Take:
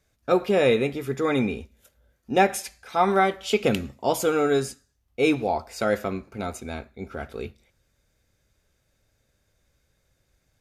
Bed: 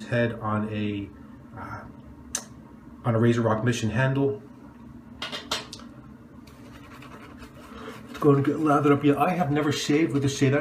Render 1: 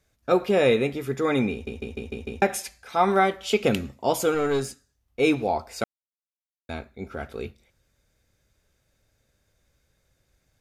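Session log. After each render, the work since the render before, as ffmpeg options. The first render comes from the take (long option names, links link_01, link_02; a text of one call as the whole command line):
ffmpeg -i in.wav -filter_complex "[0:a]asettb=1/sr,asplit=3[link_01][link_02][link_03];[link_01]atrim=end=4.344[link_04];[link_02]atrim=start=4.34:end=5.2,asetpts=PTS-STARTPTS,afade=type=in:duration=0.004:curve=qsin,afade=type=out:start_time=0.856:duration=0.004:curve=qsin,aeval=exprs='(tanh(7.08*val(0)+0.35)-tanh(0.35))/7.08':channel_layout=same[link_05];[link_03]atrim=start=5.196[link_06];[link_04][link_05]acrossfade=duration=0.004:curve1=hsin:curve2=qsin[link_07];[link_07][link_06]acrossfade=duration=0.004:curve1=qsin:curve2=hsin,asplit=9[link_08][link_09][link_10][link_11][link_12][link_13][link_14][link_15][link_16];[link_08]atrim=end=1.672[link_17];[link_09]atrim=start=1.518:end=1.672[link_18];[link_10]atrim=start=1.518:end=1.672[link_19];[link_11]atrim=start=1.518:end=1.672[link_20];[link_12]atrim=start=1.518:end=1.672[link_21];[link_13]atrim=start=1.518:end=1.672[link_22];[link_14]atrim=start=2.418:end=5.84,asetpts=PTS-STARTPTS,afade=type=out:start_time=3.418:duration=0.004:curve=hsin[link_23];[link_15]atrim=start=5.84:end=6.69,asetpts=PTS-STARTPTS,volume=0[link_24];[link_16]atrim=start=6.69,asetpts=PTS-STARTPTS,afade=type=in:duration=0.004:curve=hsin[link_25];[link_17][link_18]acrossfade=duration=0.004:curve1=hsin:curve2=hsin[link_26];[link_26][link_19]acrossfade=duration=0.004:curve1=hsin:curve2=hsin[link_27];[link_27][link_20]acrossfade=duration=0.004:curve1=hsin:curve2=hsin[link_28];[link_28][link_21]acrossfade=duration=0.004:curve1=hsin:curve2=hsin[link_29];[link_29][link_22]acrossfade=duration=0.004:curve1=hsin:curve2=hsin[link_30];[link_23][link_24][link_25]concat=n=3:v=0:a=1[link_31];[link_30][link_31]acrossfade=duration=0.004:curve1=hsin:curve2=hsin" out.wav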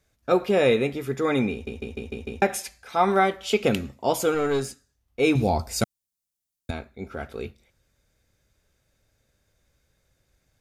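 ffmpeg -i in.wav -filter_complex "[0:a]asettb=1/sr,asplit=3[link_01][link_02][link_03];[link_01]atrim=end=5.354[link_04];[link_02]atrim=start=5.35:end=6.71,asetpts=PTS-STARTPTS,afade=type=in:duration=0.004:curve=qsin,afade=type=out:start_time=1.356:duration=0.004:curve=qsin,bass=frequency=250:gain=14,treble=frequency=4000:gain=12[link_05];[link_03]atrim=start=6.706[link_06];[link_04][link_05]acrossfade=duration=0.004:curve1=hsin:curve2=qsin[link_07];[link_07][link_06]acrossfade=duration=0.004:curve1=qsin:curve2=hsin" out.wav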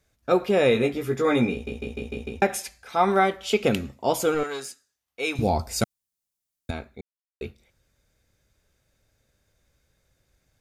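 ffmpeg -i in.wav -filter_complex "[0:a]asettb=1/sr,asplit=3[link_01][link_02][link_03];[link_01]atrim=end=0.734[link_04];[link_02]atrim=start=0.73:end=2.28,asetpts=PTS-STARTPTS,afade=type=in:duration=0.004:curve=qsin,afade=type=out:start_time=1.546:duration=0.004:curve=qsin,asplit=2[link_05][link_06];[link_06]adelay=17,volume=-3.5dB[link_07];[link_05][link_07]amix=inputs=2:normalize=0,atrim=end_sample=68355[link_08];[link_03]atrim=start=2.276[link_09];[link_04][link_08]acrossfade=duration=0.004:curve1=hsin:curve2=qsin[link_10];[link_10][link_09]acrossfade=duration=0.004:curve1=qsin:curve2=hsin,asettb=1/sr,asplit=3[link_11][link_12][link_13];[link_11]atrim=end=4.434[link_14];[link_12]atrim=start=4.43:end=5.39,asetpts=PTS-STARTPTS,afade=type=in:duration=0.004:curve=qsin,afade=type=out:start_time=0.956:duration=0.004:curve=qsin,highpass=frequency=1200:poles=1[link_15];[link_13]atrim=start=5.386[link_16];[link_14][link_15]acrossfade=duration=0.004:curve1=hsin:curve2=qsin[link_17];[link_17][link_16]acrossfade=duration=0.004:curve1=qsin:curve2=hsin,asplit=3[link_18][link_19][link_20];[link_18]atrim=end=7.01,asetpts=PTS-STARTPTS,afade=type=out:start_time=7.006:duration=0.004:curve=hsin[link_21];[link_19]atrim=start=7.01:end=7.41,asetpts=PTS-STARTPTS,volume=0[link_22];[link_20]atrim=start=7.41,asetpts=PTS-STARTPTS,afade=type=in:duration=0.004:curve=hsin[link_23];[link_21][link_22][link_23]concat=n=3:v=0:a=1" out.wav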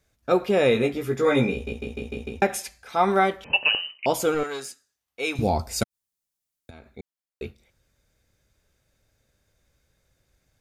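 ffmpeg -i in.wav -filter_complex "[0:a]asettb=1/sr,asplit=3[link_01][link_02][link_03];[link_01]atrim=end=1.214[link_04];[link_02]atrim=start=1.21:end=1.73,asetpts=PTS-STARTPTS,afade=type=in:duration=0.004:curve=qsin,afade=type=out:start_time=0.516:duration=0.004:curve=qsin,asplit=2[link_05][link_06];[link_06]adelay=15,volume=-5dB[link_07];[link_05][link_07]amix=inputs=2:normalize=0,atrim=end_sample=22932[link_08];[link_03]atrim=start=1.726[link_09];[link_04][link_08]acrossfade=duration=0.004:curve1=hsin:curve2=qsin[link_10];[link_10][link_09]acrossfade=duration=0.004:curve1=qsin:curve2=hsin,asettb=1/sr,asplit=3[link_11][link_12][link_13];[link_11]atrim=end=3.444[link_14];[link_12]atrim=start=3.44:end=4.06,asetpts=PTS-STARTPTS,afade=type=in:duration=0.004:curve=qsin,afade=type=out:start_time=0.616:duration=0.004:curve=qsin,lowpass=frequency=2600:width_type=q:width=0.5098,lowpass=frequency=2600:width_type=q:width=0.6013,lowpass=frequency=2600:width_type=q:width=0.9,lowpass=frequency=2600:width_type=q:width=2.563,afreqshift=-3100[link_15];[link_13]atrim=start=4.056[link_16];[link_14][link_15]acrossfade=duration=0.004:curve1=hsin:curve2=qsin[link_17];[link_17][link_16]acrossfade=duration=0.004:curve1=qsin:curve2=hsin,asettb=1/sr,asplit=3[link_18][link_19][link_20];[link_18]atrim=end=5.834[link_21];[link_19]atrim=start=5.83:end=6.9,asetpts=PTS-STARTPTS,afade=type=in:duration=0.004:curve=qsin,afade=type=out:start_time=1.066:duration=0.004:curve=qsin,acompressor=threshold=-41dB:ratio=6:attack=3.2:release=140:knee=1:detection=peak[link_22];[link_20]atrim=start=6.896[link_23];[link_21][link_22]acrossfade=duration=0.004:curve1=hsin:curve2=qsin[link_24];[link_24][link_23]acrossfade=duration=0.004:curve1=qsin:curve2=hsin" out.wav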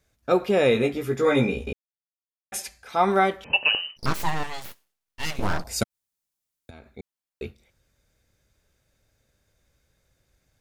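ffmpeg -i in.wav -filter_complex "[0:a]asplit=3[link_01][link_02][link_03];[link_01]afade=type=out:start_time=3.96:duration=0.02[link_04];[link_02]aeval=exprs='abs(val(0))':channel_layout=same,afade=type=in:start_time=3.96:duration=0.02,afade=type=out:start_time=5.63:duration=0.02[link_05];[link_03]afade=type=in:start_time=5.63:duration=0.02[link_06];[link_04][link_05][link_06]amix=inputs=3:normalize=0,asplit=3[link_07][link_08][link_09];[link_07]atrim=end=1.73,asetpts=PTS-STARTPTS,afade=type=out:start_time=1.726:duration=0.004:curve=hsin[link_10];[link_08]atrim=start=1.73:end=2.52,asetpts=PTS-STARTPTS,volume=0[link_11];[link_09]atrim=start=2.52,asetpts=PTS-STARTPTS,afade=type=in:duration=0.004:curve=hsin[link_12];[link_10][link_11][link_12]concat=n=3:v=0:a=1" out.wav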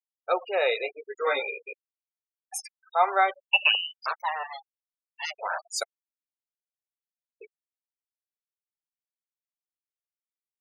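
ffmpeg -i in.wav -af "highpass=frequency=570:width=0.5412,highpass=frequency=570:width=1.3066,afftfilt=real='re*gte(hypot(re,im),0.0398)':imag='im*gte(hypot(re,im),0.0398)':win_size=1024:overlap=0.75" out.wav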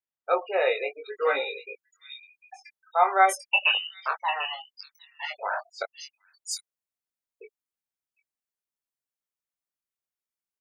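ffmpeg -i in.wav -filter_complex "[0:a]asplit=2[link_01][link_02];[link_02]adelay=21,volume=-4.5dB[link_03];[link_01][link_03]amix=inputs=2:normalize=0,acrossover=split=3700[link_04][link_05];[link_05]adelay=750[link_06];[link_04][link_06]amix=inputs=2:normalize=0" out.wav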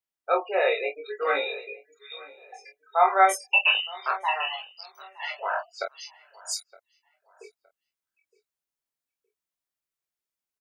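ffmpeg -i in.wav -filter_complex "[0:a]asplit=2[link_01][link_02];[link_02]adelay=24,volume=-4.5dB[link_03];[link_01][link_03]amix=inputs=2:normalize=0,asplit=2[link_04][link_05];[link_05]adelay=916,lowpass=frequency=2200:poles=1,volume=-20.5dB,asplit=2[link_06][link_07];[link_07]adelay=916,lowpass=frequency=2200:poles=1,volume=0.29[link_08];[link_04][link_06][link_08]amix=inputs=3:normalize=0" out.wav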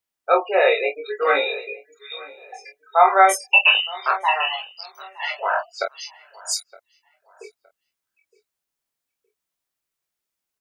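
ffmpeg -i in.wav -af "volume=6.5dB,alimiter=limit=-3dB:level=0:latency=1" out.wav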